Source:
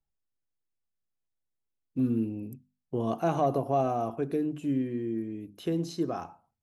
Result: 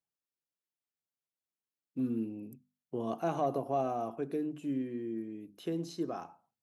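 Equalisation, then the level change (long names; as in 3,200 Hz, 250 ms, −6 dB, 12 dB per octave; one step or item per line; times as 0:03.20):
high-pass filter 160 Hz 12 dB per octave
−5.0 dB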